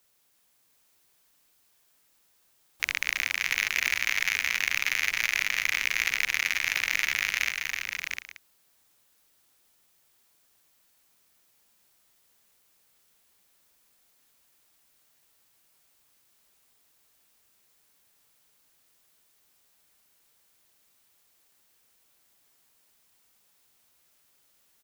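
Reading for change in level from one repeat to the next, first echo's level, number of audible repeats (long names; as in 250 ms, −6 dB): repeats not evenly spaced, −12.5 dB, 6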